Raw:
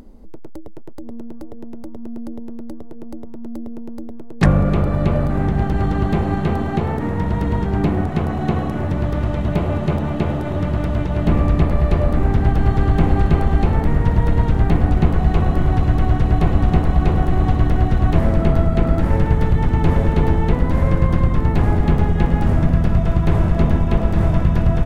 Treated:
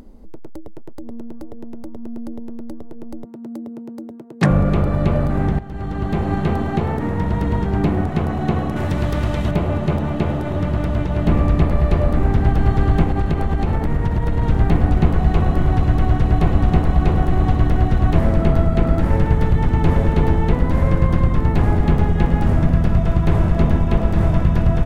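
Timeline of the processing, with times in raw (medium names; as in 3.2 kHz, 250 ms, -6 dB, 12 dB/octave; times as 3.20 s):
3.24–4.51 s: high-pass 120 Hz 24 dB/octave
5.59–6.36 s: fade in linear, from -18 dB
8.76–9.51 s: treble shelf 2.2 kHz +10 dB
13.02–14.42 s: compression, threshold -13 dBFS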